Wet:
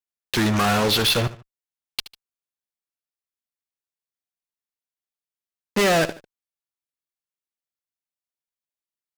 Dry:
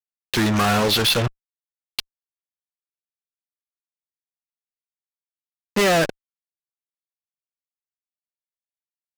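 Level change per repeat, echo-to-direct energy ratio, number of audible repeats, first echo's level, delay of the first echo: -9.0 dB, -15.5 dB, 2, -16.0 dB, 74 ms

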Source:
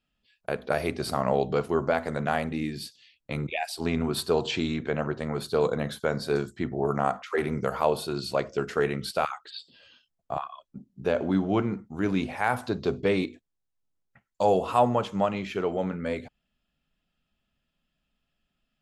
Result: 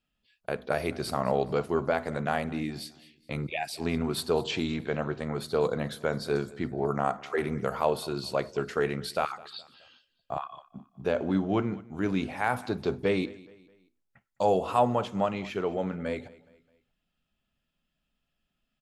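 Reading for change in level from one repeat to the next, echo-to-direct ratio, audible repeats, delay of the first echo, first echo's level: -8.0 dB, -20.0 dB, 2, 0.21 s, -21.0 dB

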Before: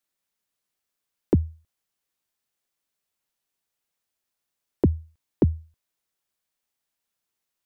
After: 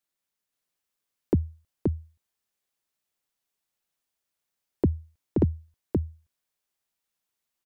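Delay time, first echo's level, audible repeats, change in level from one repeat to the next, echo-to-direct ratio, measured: 0.526 s, -3.0 dB, 1, no steady repeat, -3.0 dB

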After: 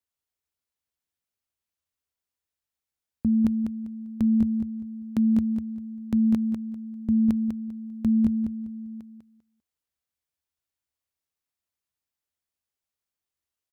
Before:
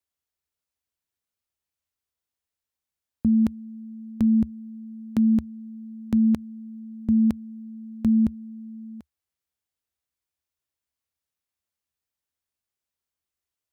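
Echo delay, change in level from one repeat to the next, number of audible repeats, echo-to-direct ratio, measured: 0.198 s, -13.0 dB, 3, -6.5 dB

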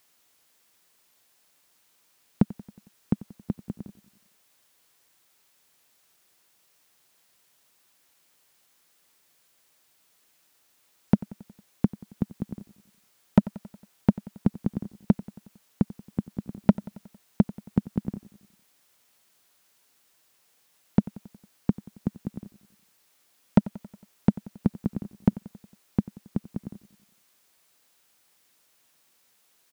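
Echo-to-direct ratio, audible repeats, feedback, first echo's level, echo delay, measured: -17.0 dB, 4, 59%, -19.0 dB, 91 ms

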